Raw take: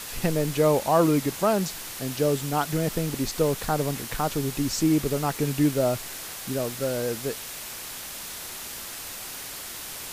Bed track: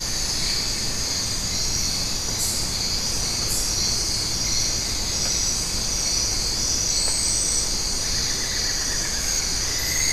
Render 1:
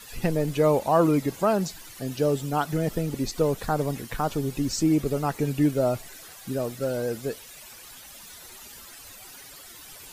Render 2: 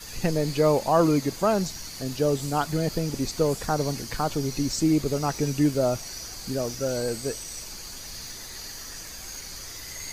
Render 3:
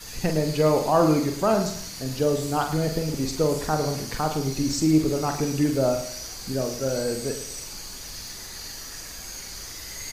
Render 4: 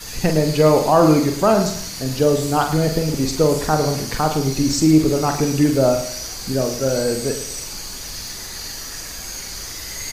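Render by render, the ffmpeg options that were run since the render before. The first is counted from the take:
-af "afftdn=nr=13:nf=-38"
-filter_complex "[1:a]volume=0.158[s0];[0:a][s0]amix=inputs=2:normalize=0"
-filter_complex "[0:a]asplit=2[s0][s1];[s1]adelay=45,volume=0.473[s2];[s0][s2]amix=inputs=2:normalize=0,aecho=1:1:108|216|324:0.282|0.0902|0.0289"
-af "volume=2.11,alimiter=limit=0.708:level=0:latency=1"

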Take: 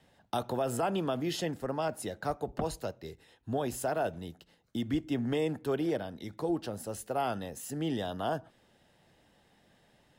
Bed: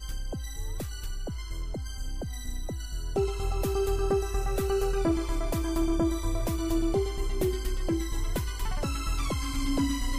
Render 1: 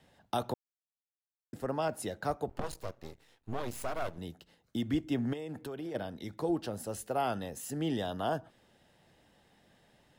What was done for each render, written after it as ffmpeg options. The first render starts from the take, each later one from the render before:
-filter_complex "[0:a]asettb=1/sr,asplit=3[s0][s1][s2];[s0]atrim=end=2.494[s3];[s1]atrim=start=2.49:end=4.18,asetpts=PTS-STARTPTS,afade=t=in:d=0.004:c=qsin,afade=t=out:st=1.686:d=0.004:c=qsin,aeval=exprs='max(val(0),0)':c=same[s4];[s2]atrim=start=4.176[s5];[s3][s4]acrossfade=d=0.004:c1=hsin:c2=qsin[s6];[s6][s5]acrossfade=d=0.004:c1=qsin:c2=hsin,asplit=3[s7][s8][s9];[s7]afade=t=out:st=5.32:d=0.02[s10];[s8]acompressor=threshold=0.0158:ratio=10:attack=3.2:release=140:knee=1:detection=peak,afade=t=in:st=5.32:d=0.02,afade=t=out:st=5.94:d=0.02[s11];[s9]afade=t=in:st=5.94:d=0.02[s12];[s10][s11][s12]amix=inputs=3:normalize=0,asplit=3[s13][s14][s15];[s13]atrim=end=0.54,asetpts=PTS-STARTPTS,afade=t=out:st=0.536:d=0.004:c=hsin[s16];[s14]atrim=start=0.54:end=1.53,asetpts=PTS-STARTPTS,volume=0[s17];[s15]atrim=start=1.53,asetpts=PTS-STARTPTS,afade=t=in:d=0.004:c=hsin[s18];[s16][s17][s18]concat=n=3:v=0:a=1"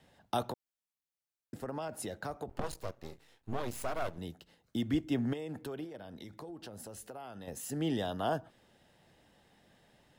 -filter_complex "[0:a]asettb=1/sr,asplit=3[s0][s1][s2];[s0]atrim=end=0.504[s3];[s1]atrim=start=0.5:end=2.58,asetpts=PTS-STARTPTS,afade=t=in:d=0.004:c=qsin,afade=t=out:st=2.076:d=0.004:c=qsin,acompressor=threshold=0.02:ratio=6:attack=3.2:release=140:knee=1:detection=peak[s4];[s2]atrim=start=2.576[s5];[s3][s4]acrossfade=d=0.004:c1=hsin:c2=qsin[s6];[s6][s5]acrossfade=d=0.004:c1=qsin:c2=hsin,asettb=1/sr,asplit=3[s7][s8][s9];[s7]atrim=end=3.084[s10];[s8]atrim=start=3.08:end=3.57,asetpts=PTS-STARTPTS,afade=t=in:d=0.004:c=qsin,afade=t=out:st=0.486:d=0.004:c=qsin,asplit=2[s11][s12];[s12]adelay=31,volume=0.299[s13];[s11][s13]amix=inputs=2:normalize=0,atrim=end_sample=21609[s14];[s9]atrim=start=3.566[s15];[s10][s14]acrossfade=d=0.004:c1=hsin:c2=qsin[s16];[s16][s15]acrossfade=d=0.004:c1=qsin:c2=hsin,asettb=1/sr,asplit=3[s17][s18][s19];[s17]atrim=end=5.844[s20];[s18]atrim=start=5.84:end=7.48,asetpts=PTS-STARTPTS,afade=t=in:d=0.004:c=qsin,afade=t=out:st=1.636:d=0.004:c=qsin,acompressor=threshold=0.00708:ratio=6:attack=3.2:release=140:knee=1:detection=peak[s21];[s19]atrim=start=7.476[s22];[s20][s21]acrossfade=d=0.004:c1=hsin:c2=qsin[s23];[s23][s22]acrossfade=d=0.004:c1=qsin:c2=hsin"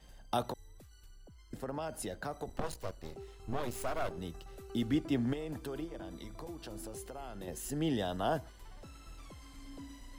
-filter_complex "[1:a]volume=0.0841[s0];[0:a][s0]amix=inputs=2:normalize=0"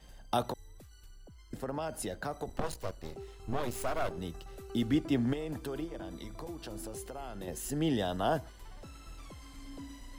-af "volume=1.33"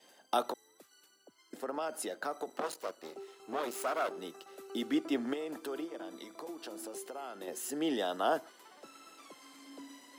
-af "highpass=f=280:w=0.5412,highpass=f=280:w=1.3066,adynamicequalizer=threshold=0.00112:dfrequency=1300:dqfactor=6.4:tfrequency=1300:tqfactor=6.4:attack=5:release=100:ratio=0.375:range=3:mode=boostabove:tftype=bell"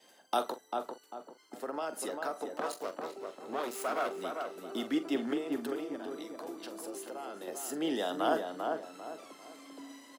-filter_complex "[0:a]asplit=2[s0][s1];[s1]adelay=44,volume=0.237[s2];[s0][s2]amix=inputs=2:normalize=0,asplit=2[s3][s4];[s4]adelay=395,lowpass=f=1500:p=1,volume=0.668,asplit=2[s5][s6];[s6]adelay=395,lowpass=f=1500:p=1,volume=0.36,asplit=2[s7][s8];[s8]adelay=395,lowpass=f=1500:p=1,volume=0.36,asplit=2[s9][s10];[s10]adelay=395,lowpass=f=1500:p=1,volume=0.36,asplit=2[s11][s12];[s12]adelay=395,lowpass=f=1500:p=1,volume=0.36[s13];[s3][s5][s7][s9][s11][s13]amix=inputs=6:normalize=0"

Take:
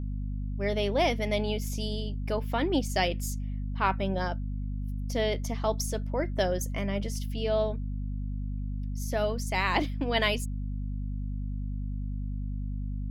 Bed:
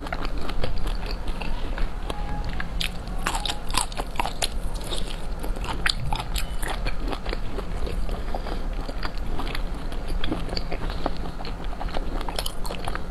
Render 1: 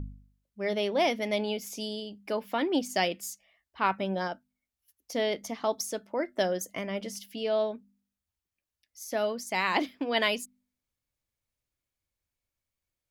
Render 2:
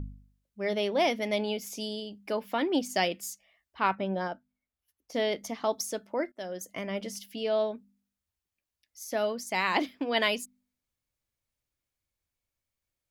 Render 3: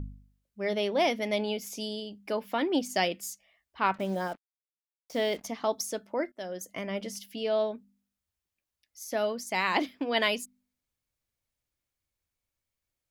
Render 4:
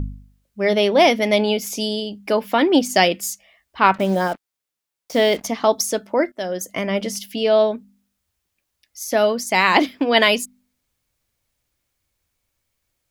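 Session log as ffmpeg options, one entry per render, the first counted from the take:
-af "bandreject=f=50:t=h:w=4,bandreject=f=100:t=h:w=4,bandreject=f=150:t=h:w=4,bandreject=f=200:t=h:w=4,bandreject=f=250:t=h:w=4"
-filter_complex "[0:a]asettb=1/sr,asplit=3[s0][s1][s2];[s0]atrim=end=3.954[s3];[s1]atrim=start=3.95:end=5.14,asetpts=PTS-STARTPTS,afade=t=in:d=0.004:c=qsin,afade=t=out:st=1.186:d=0.004:c=qsin,highshelf=f=3500:g=-10.5[s4];[s2]atrim=start=5.136[s5];[s3][s4]acrossfade=d=0.004:c1=hsin:c2=qsin[s6];[s6][s5]acrossfade=d=0.004:c1=qsin:c2=hsin,asplit=2[s7][s8];[s7]atrim=end=6.32,asetpts=PTS-STARTPTS,afade=t=out:st=6.316:d=0.004:c=hsin:silence=0.1[s9];[s8]atrim=start=6.32,asetpts=PTS-STARTPTS,afade=t=in:d=0.57:silence=0.1[s10];[s9][s10]concat=n=2:v=0:a=1"
-filter_complex "[0:a]asettb=1/sr,asplit=3[s0][s1][s2];[s0]atrim=end=3.944[s3];[s1]atrim=start=3.94:end=5.47,asetpts=PTS-STARTPTS,afade=t=in:d=0.004:c=qsin,afade=t=out:st=1.526:d=0.004:c=qsin,acrusher=bits=7:mix=0:aa=0.5[s4];[s2]atrim=start=5.466[s5];[s3][s4]acrossfade=d=0.004:c1=hsin:c2=qsin[s6];[s6][s5]acrossfade=d=0.004:c1=qsin:c2=hsin"
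-af "volume=3.98,alimiter=limit=0.891:level=0:latency=1"

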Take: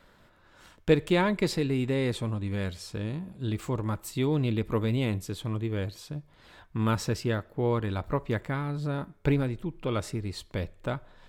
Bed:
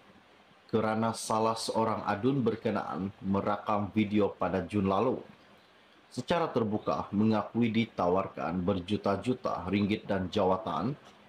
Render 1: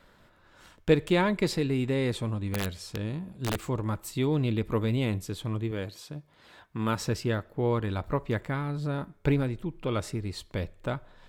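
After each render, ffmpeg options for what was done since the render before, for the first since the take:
-filter_complex "[0:a]asettb=1/sr,asplit=3[s0][s1][s2];[s0]atrim=end=2.524[s3];[s1]atrim=start=2.52:end=3.63,asetpts=PTS-STARTPTS,afade=t=in:d=0.004:c=qsin,afade=t=out:st=1.106:d=0.004:c=qsin,aeval=exprs='(mod(14.1*val(0)+1,2)-1)/14.1':c=same[s4];[s2]atrim=start=3.626[s5];[s3][s4]acrossfade=d=0.004:c1=hsin:c2=qsin[s6];[s6][s5]acrossfade=d=0.004:c1=qsin:c2=hsin,asettb=1/sr,asplit=3[s7][s8][s9];[s7]atrim=end=5.714[s10];[s8]atrim=start=5.71:end=7,asetpts=PTS-STARTPTS,afade=t=in:d=0.004:c=qsin,afade=t=out:st=1.286:d=0.004:c=qsin,highpass=f=170:p=1[s11];[s9]atrim=start=6.996[s12];[s10][s11]acrossfade=d=0.004:c1=hsin:c2=qsin[s13];[s13][s12]acrossfade=d=0.004:c1=qsin:c2=hsin"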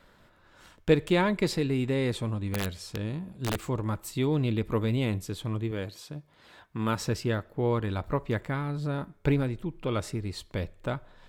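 -af anull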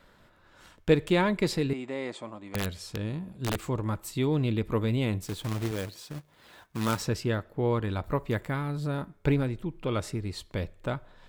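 -filter_complex "[0:a]asettb=1/sr,asplit=3[s0][s1][s2];[s0]atrim=end=1.734[s3];[s1]atrim=start=1.73:end=2.55,asetpts=PTS-STARTPTS,afade=t=in:d=0.004:c=qsin,afade=t=out:st=0.816:d=0.004:c=qsin,highpass=380,equalizer=f=450:t=q:w=4:g=-9,equalizer=f=630:t=q:w=4:g=4,equalizer=f=1600:t=q:w=4:g=-6,equalizer=f=2700:t=q:w=4:g=-6,equalizer=f=3900:t=q:w=4:g=-8,equalizer=f=5600:t=q:w=4:g=-7,lowpass=f=7300:w=0.5412,lowpass=f=7300:w=1.3066[s4];[s2]atrim=start=2.546[s5];[s3][s4]acrossfade=d=0.004:c1=hsin:c2=qsin[s6];[s6][s5]acrossfade=d=0.004:c1=qsin:c2=hsin,asettb=1/sr,asplit=3[s7][s8][s9];[s7]atrim=end=5.224[s10];[s8]atrim=start=5.22:end=7.02,asetpts=PTS-STARTPTS,afade=t=in:d=0.004:c=qsin,afade=t=out:st=1.796:d=0.004:c=qsin,acrusher=bits=2:mode=log:mix=0:aa=0.000001[s11];[s9]atrim=start=7.016[s12];[s10][s11]acrossfade=d=0.004:c1=hsin:c2=qsin[s13];[s13][s12]acrossfade=d=0.004:c1=qsin:c2=hsin,asettb=1/sr,asplit=3[s14][s15][s16];[s14]atrim=end=8.044[s17];[s15]atrim=start=8.04:end=9.02,asetpts=PTS-STARTPTS,afade=t=in:d=0.004:c=qsin,afade=t=out:st=0.976:d=0.004:c=qsin,highshelf=f=10000:g=10.5[s18];[s16]atrim=start=9.016[s19];[s17][s18]acrossfade=d=0.004:c1=hsin:c2=qsin[s20];[s20][s19]acrossfade=d=0.004:c1=qsin:c2=hsin"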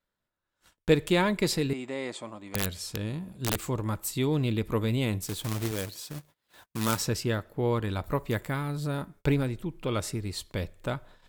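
-af "agate=range=0.0447:threshold=0.00282:ratio=16:detection=peak,aemphasis=mode=production:type=cd"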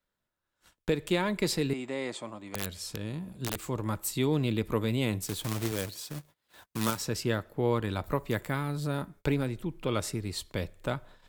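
-filter_complex "[0:a]acrossover=split=160|3000[s0][s1][s2];[s0]acompressor=threshold=0.01:ratio=1.5[s3];[s3][s1][s2]amix=inputs=3:normalize=0,alimiter=limit=0.188:level=0:latency=1:release=335"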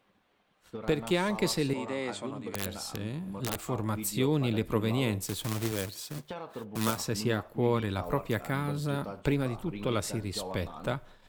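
-filter_complex "[1:a]volume=0.251[s0];[0:a][s0]amix=inputs=2:normalize=0"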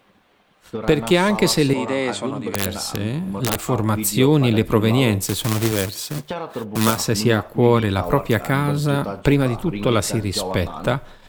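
-af "volume=3.98,alimiter=limit=0.708:level=0:latency=1"

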